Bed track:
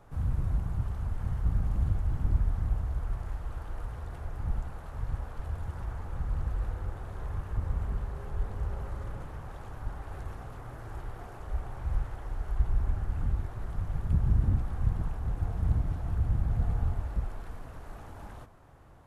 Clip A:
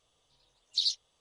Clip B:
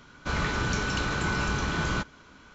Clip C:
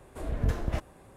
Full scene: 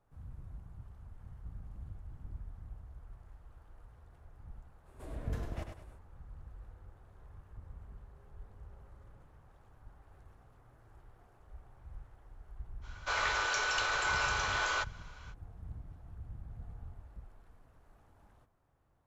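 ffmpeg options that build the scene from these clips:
-filter_complex "[0:a]volume=-18.5dB[a];[3:a]aecho=1:1:100|200|300|400:0.501|0.17|0.0579|0.0197[b];[2:a]highpass=f=540:w=0.5412,highpass=f=540:w=1.3066[c];[b]atrim=end=1.16,asetpts=PTS-STARTPTS,volume=-10dB,afade=t=in:d=0.05,afade=t=out:st=1.11:d=0.05,adelay=4840[d];[c]atrim=end=2.54,asetpts=PTS-STARTPTS,volume=-1dB,afade=t=in:d=0.05,afade=t=out:st=2.49:d=0.05,adelay=12810[e];[a][d][e]amix=inputs=3:normalize=0"

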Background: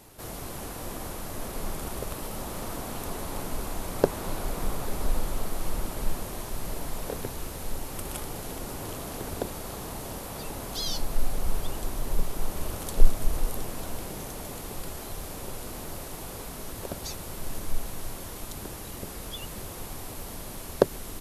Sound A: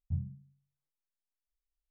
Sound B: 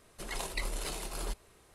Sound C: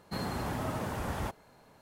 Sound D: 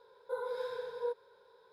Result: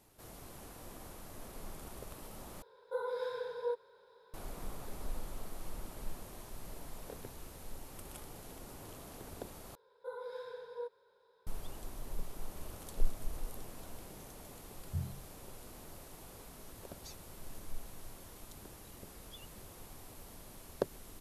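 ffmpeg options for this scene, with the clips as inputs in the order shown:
-filter_complex "[4:a]asplit=2[a][b];[0:a]volume=-13.5dB,asplit=3[c][d][e];[c]atrim=end=2.624[f];[a]atrim=end=1.72[g];[d]atrim=start=4.336:end=9.754[h];[b]atrim=end=1.72,asetpts=PTS-STARTPTS,volume=-6.5dB[i];[e]atrim=start=11.466[j];[1:a]atrim=end=1.9,asetpts=PTS-STARTPTS,volume=-3.5dB,afade=t=in:d=0.004:c=hsin,afade=t=out:st=1.896:d=0.004:c=hsin,adelay=14830[k];[f][g]acrossfade=d=0.004:c1=hsin:c2=hsin[l];[l][h]acrossfade=d=0.004:c1=hsin:c2=hsin[m];[m][i]acrossfade=d=0.004:c1=hsin:c2=hsin[n];[n][j]acrossfade=d=0.004:c1=hsin:c2=hsin[o];[o][k]amix=inputs=2:normalize=0"

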